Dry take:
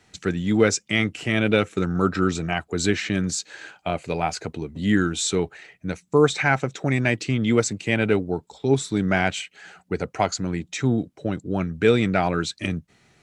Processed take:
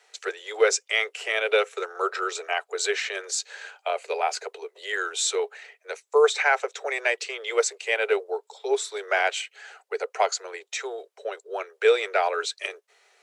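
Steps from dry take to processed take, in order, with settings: steep high-pass 400 Hz 96 dB/octave

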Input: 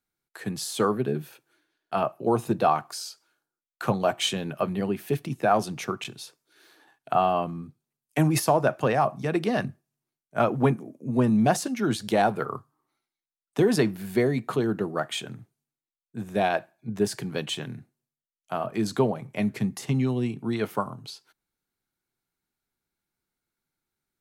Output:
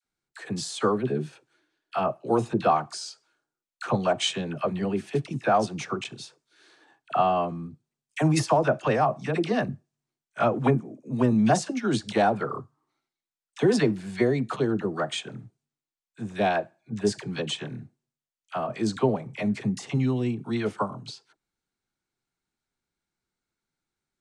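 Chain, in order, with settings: steep low-pass 8.8 kHz 36 dB/octave; phase dispersion lows, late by 45 ms, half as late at 920 Hz

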